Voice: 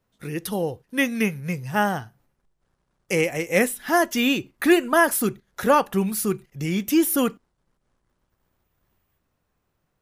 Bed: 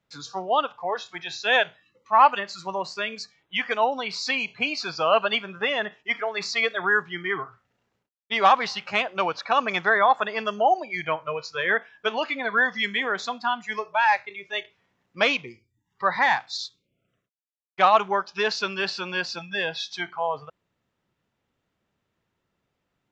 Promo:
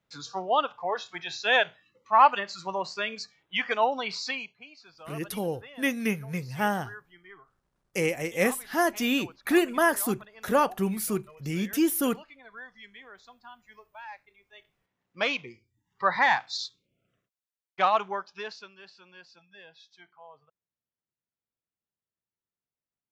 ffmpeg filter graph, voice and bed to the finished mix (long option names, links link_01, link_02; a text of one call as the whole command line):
ffmpeg -i stem1.wav -i stem2.wav -filter_complex "[0:a]adelay=4850,volume=-5dB[link_01];[1:a]volume=19.5dB,afade=type=out:start_time=4.11:duration=0.46:silence=0.0891251,afade=type=in:start_time=14.59:duration=1.19:silence=0.0841395,afade=type=out:start_time=17.32:duration=1.39:silence=0.0794328[link_02];[link_01][link_02]amix=inputs=2:normalize=0" out.wav